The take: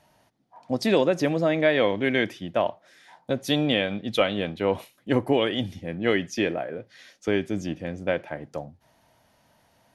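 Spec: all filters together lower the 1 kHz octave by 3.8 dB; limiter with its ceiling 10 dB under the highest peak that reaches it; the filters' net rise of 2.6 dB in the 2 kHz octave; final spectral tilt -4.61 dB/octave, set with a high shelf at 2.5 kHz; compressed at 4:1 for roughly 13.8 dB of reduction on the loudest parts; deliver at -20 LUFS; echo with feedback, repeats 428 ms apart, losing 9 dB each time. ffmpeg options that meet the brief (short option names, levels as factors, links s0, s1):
-af "equalizer=f=1000:t=o:g=-6.5,equalizer=f=2000:t=o:g=7.5,highshelf=f=2500:g=-6,acompressor=threshold=0.02:ratio=4,alimiter=level_in=1.88:limit=0.0631:level=0:latency=1,volume=0.531,aecho=1:1:428|856|1284|1712:0.355|0.124|0.0435|0.0152,volume=11.2"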